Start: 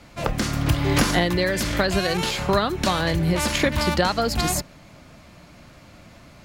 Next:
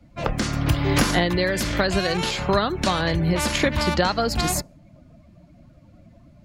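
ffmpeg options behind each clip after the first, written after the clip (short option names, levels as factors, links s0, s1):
-af "afftdn=nr=18:nf=-42"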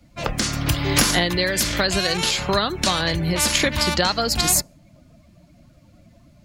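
-af "highshelf=f=2800:g=11.5,volume=0.841"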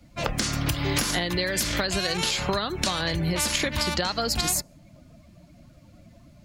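-af "acompressor=threshold=0.0794:ratio=6"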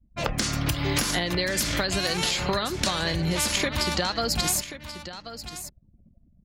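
-af "anlmdn=0.251,aecho=1:1:1083:0.237"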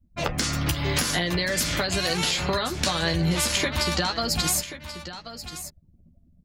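-filter_complex "[0:a]asplit=2[s0][s1];[s1]adelay=12,volume=0.501[s2];[s0][s2]amix=inputs=2:normalize=0"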